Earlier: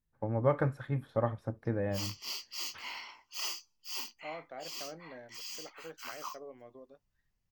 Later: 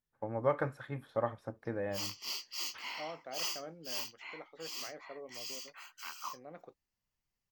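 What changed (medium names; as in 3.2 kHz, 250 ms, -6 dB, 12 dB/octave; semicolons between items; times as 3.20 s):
first voice: add bass shelf 240 Hz -12 dB; second voice: entry -1.25 s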